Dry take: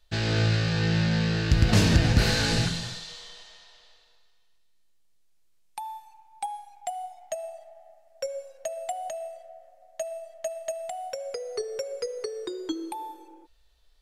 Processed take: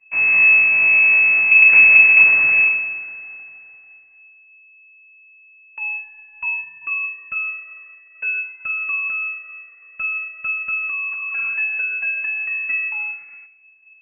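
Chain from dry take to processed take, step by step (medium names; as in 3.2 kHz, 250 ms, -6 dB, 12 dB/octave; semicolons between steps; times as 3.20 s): spectral replace 11.13–11.51 s, 510–1200 Hz before; full-wave rectifier; distance through air 200 m; reverberation RT60 0.50 s, pre-delay 6 ms, DRR 10.5 dB; frequency inversion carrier 2.6 kHz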